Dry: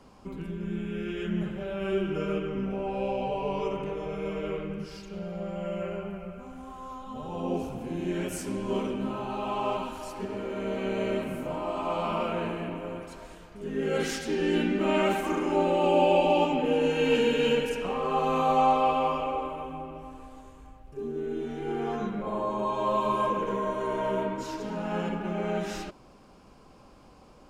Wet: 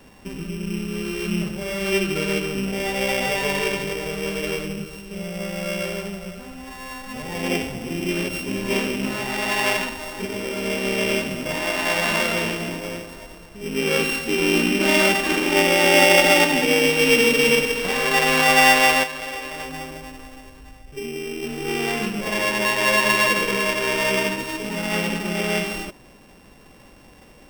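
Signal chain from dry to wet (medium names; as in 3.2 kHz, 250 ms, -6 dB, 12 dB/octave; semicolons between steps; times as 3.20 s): sorted samples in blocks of 16 samples; dynamic bell 2.7 kHz, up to +6 dB, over -41 dBFS, Q 0.89; 19.03–21.43 s: compression 12:1, threshold -32 dBFS, peak gain reduction 12.5 dB; trim +5.5 dB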